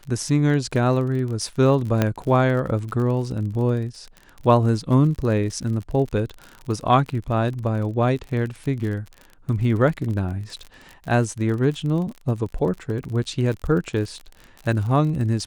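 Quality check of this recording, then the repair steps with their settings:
crackle 42 per s -30 dBFS
2.02 s: pop -6 dBFS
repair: de-click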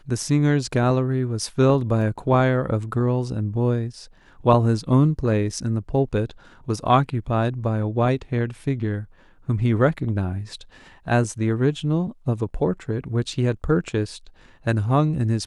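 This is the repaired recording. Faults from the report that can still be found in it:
2.02 s: pop

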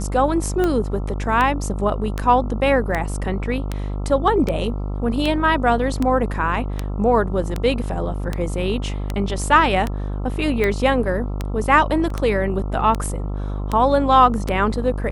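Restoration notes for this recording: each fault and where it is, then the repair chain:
buzz 50 Hz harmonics 27 -25 dBFS
tick 78 rpm -9 dBFS
12.10 s: dropout 3.4 ms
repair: de-click; de-hum 50 Hz, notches 27; interpolate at 12.10 s, 3.4 ms

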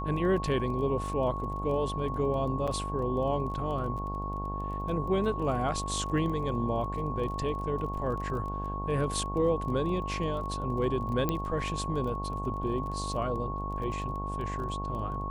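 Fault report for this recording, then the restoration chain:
buzz 50 Hz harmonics 22 -36 dBFS
crackle 20 per s -38 dBFS
whine 1.1 kHz -36 dBFS
2.67–2.68 s: dropout 6.1 ms
11.29 s: pop -15 dBFS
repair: de-click; band-stop 1.1 kHz, Q 30; de-hum 50 Hz, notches 22; interpolate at 2.67 s, 6.1 ms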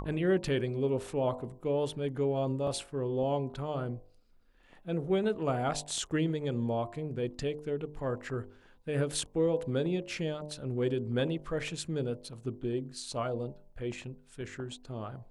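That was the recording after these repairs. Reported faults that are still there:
nothing left

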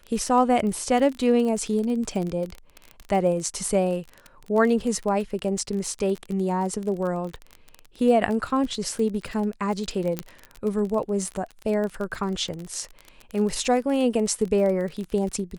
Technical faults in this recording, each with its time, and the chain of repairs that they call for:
crackle 25 per s -28 dBFS
10.19 s: pop -11 dBFS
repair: de-click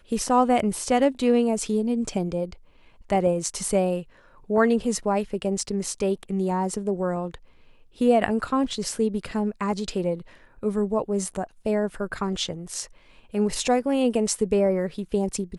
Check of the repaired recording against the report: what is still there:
10.19 s: pop

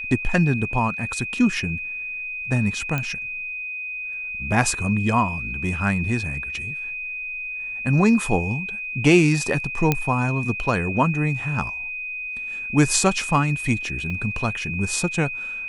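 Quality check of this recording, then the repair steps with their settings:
whine 2.5 kHz -28 dBFS
2.98 s: pop -11 dBFS
9.92 s: pop -5 dBFS
14.10 s: dropout 3.2 ms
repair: de-click; band-stop 2.5 kHz, Q 30; interpolate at 14.10 s, 3.2 ms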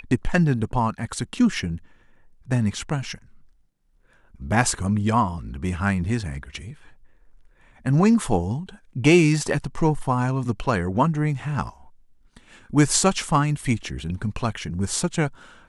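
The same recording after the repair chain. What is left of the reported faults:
nothing left

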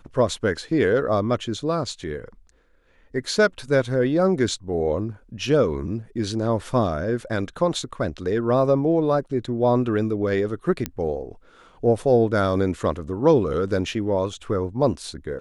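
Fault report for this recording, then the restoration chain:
10.86 s: pop -10 dBFS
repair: de-click

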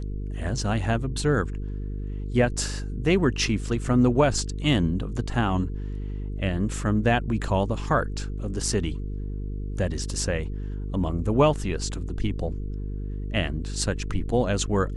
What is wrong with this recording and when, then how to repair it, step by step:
buzz 50 Hz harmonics 9 -31 dBFS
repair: de-hum 50 Hz, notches 9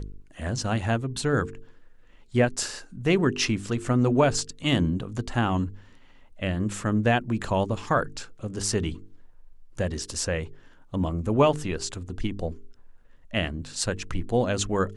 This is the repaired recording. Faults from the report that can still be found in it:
nothing left

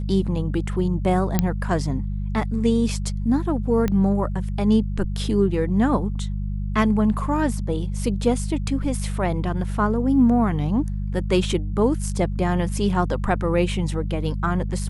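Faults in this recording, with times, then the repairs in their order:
hum 50 Hz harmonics 4 -26 dBFS
1.39 s: pop -5 dBFS
3.88 s: pop -11 dBFS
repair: de-click; de-hum 50 Hz, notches 4

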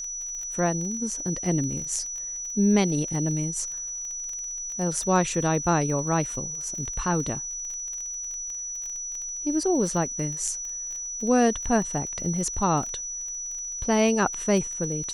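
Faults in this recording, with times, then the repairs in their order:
crackle 23 per s -32 dBFS
whine 5.9 kHz -31 dBFS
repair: de-click; band-stop 5.9 kHz, Q 30

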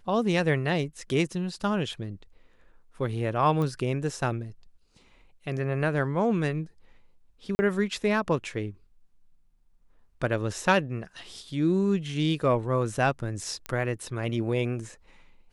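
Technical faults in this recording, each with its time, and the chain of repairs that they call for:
3.62 s: pop -19 dBFS
7.55–7.59 s: dropout 40 ms
13.66 s: pop -18 dBFS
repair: de-click; interpolate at 7.55 s, 40 ms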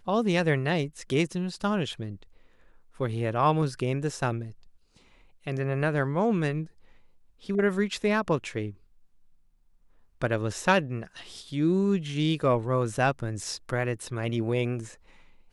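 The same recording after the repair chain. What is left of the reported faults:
nothing left

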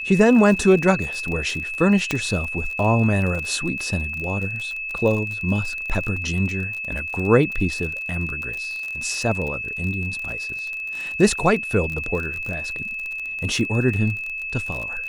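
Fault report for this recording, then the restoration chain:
crackle 40 per s -27 dBFS
whine 2.6 kHz -27 dBFS
2.11 s: pop -8 dBFS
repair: de-click; band-stop 2.6 kHz, Q 30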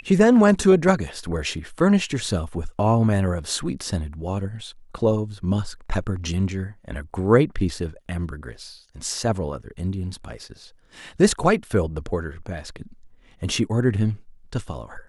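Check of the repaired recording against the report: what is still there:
nothing left

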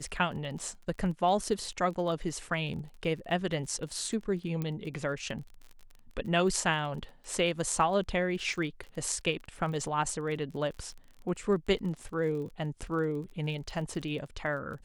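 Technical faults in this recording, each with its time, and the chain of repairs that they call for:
crackle 29 per s -40 dBFS
4.62 s: pop -21 dBFS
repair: de-click

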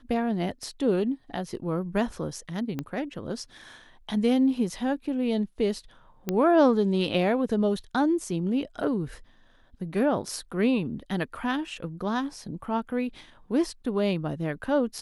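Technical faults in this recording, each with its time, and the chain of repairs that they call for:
2.79 s: pop -18 dBFS
6.29 s: pop -13 dBFS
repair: de-click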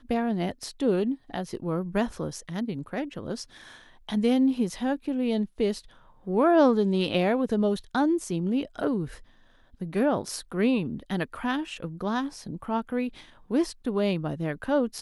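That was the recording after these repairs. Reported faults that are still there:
2.79 s: pop

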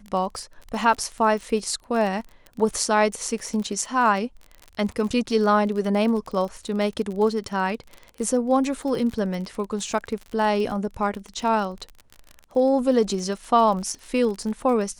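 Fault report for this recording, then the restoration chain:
crackle 37 per s -30 dBFS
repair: de-click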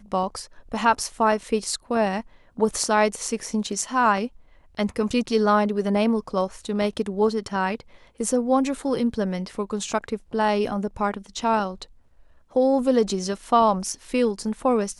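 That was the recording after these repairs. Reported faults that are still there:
nothing left

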